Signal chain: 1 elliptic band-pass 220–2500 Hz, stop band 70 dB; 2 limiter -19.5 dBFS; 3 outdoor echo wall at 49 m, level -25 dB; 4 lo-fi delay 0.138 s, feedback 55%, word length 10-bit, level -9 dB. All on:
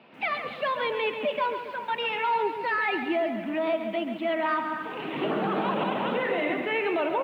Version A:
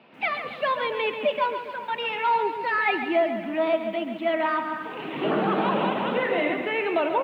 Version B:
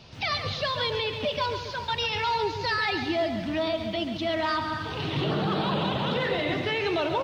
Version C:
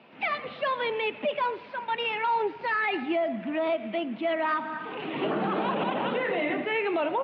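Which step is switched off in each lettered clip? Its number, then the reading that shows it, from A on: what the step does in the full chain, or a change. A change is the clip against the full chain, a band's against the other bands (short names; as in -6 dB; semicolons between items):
2, crest factor change +2.0 dB; 1, 125 Hz band +12.0 dB; 4, crest factor change -2.0 dB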